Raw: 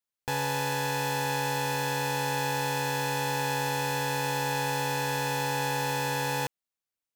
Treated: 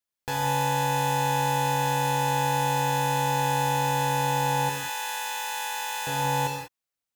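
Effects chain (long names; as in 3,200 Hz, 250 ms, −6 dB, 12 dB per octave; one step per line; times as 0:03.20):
0:04.69–0:06.07: high-pass filter 1,300 Hz 12 dB per octave
reverb whose tail is shaped and stops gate 220 ms flat, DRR 1.5 dB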